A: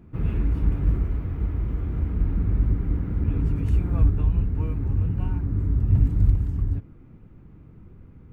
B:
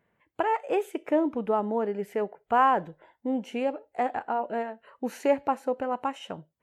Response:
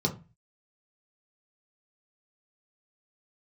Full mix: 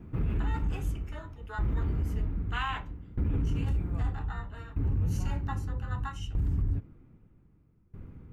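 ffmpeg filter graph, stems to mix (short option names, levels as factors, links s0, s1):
-filter_complex "[0:a]aeval=exprs='val(0)*pow(10,-24*if(lt(mod(0.63*n/s,1),2*abs(0.63)/1000),1-mod(0.63*n/s,1)/(2*abs(0.63)/1000),(mod(0.63*n/s,1)-2*abs(0.63)/1000)/(1-2*abs(0.63)/1000))/20)':c=same,volume=1.41[s0];[1:a]afwtdn=0.0282,crystalizer=i=5:c=0,highpass=f=2400:t=q:w=2.1,volume=0.841,asplit=2[s1][s2];[s2]volume=0.531[s3];[2:a]atrim=start_sample=2205[s4];[s3][s4]afir=irnorm=-1:irlink=0[s5];[s0][s1][s5]amix=inputs=3:normalize=0,alimiter=limit=0.0794:level=0:latency=1:release=25"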